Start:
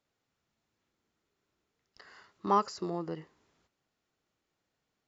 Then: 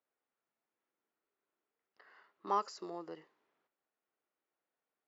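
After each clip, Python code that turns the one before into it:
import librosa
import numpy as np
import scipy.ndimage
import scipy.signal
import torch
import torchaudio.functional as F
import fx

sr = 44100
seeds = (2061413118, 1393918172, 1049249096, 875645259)

y = scipy.signal.sosfilt(scipy.signal.butter(2, 360.0, 'highpass', fs=sr, output='sos'), x)
y = fx.env_lowpass(y, sr, base_hz=2100.0, full_db=-33.0)
y = F.gain(torch.from_numpy(y), -6.0).numpy()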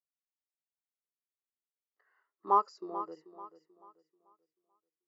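y = fx.echo_feedback(x, sr, ms=437, feedback_pct=47, wet_db=-9.0)
y = fx.spectral_expand(y, sr, expansion=1.5)
y = F.gain(torch.from_numpy(y), 7.0).numpy()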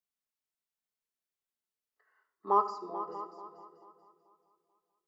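y = x + 10.0 ** (-16.0 / 20.0) * np.pad(x, (int(636 * sr / 1000.0), 0))[:len(x)]
y = fx.room_shoebox(y, sr, seeds[0], volume_m3=3900.0, walls='furnished', distance_m=1.5)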